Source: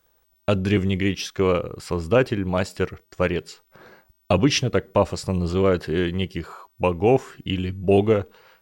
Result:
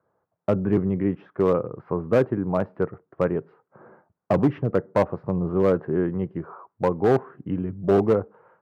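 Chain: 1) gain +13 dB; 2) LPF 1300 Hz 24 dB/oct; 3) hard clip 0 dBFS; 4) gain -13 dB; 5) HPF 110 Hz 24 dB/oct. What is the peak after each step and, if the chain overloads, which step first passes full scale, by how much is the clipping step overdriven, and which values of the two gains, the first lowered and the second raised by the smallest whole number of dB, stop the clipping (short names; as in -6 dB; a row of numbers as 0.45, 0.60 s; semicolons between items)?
+6.5, +6.5, 0.0, -13.0, -7.0 dBFS; step 1, 6.5 dB; step 1 +6 dB, step 4 -6 dB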